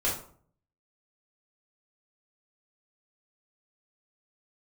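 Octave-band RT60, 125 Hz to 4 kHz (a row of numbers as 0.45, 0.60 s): 0.80, 0.60, 0.55, 0.50, 0.35, 0.30 s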